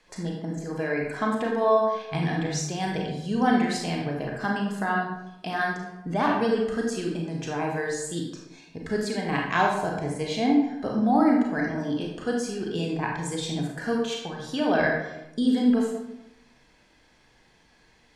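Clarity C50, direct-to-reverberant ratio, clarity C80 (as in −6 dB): 2.5 dB, −1.0 dB, 5.0 dB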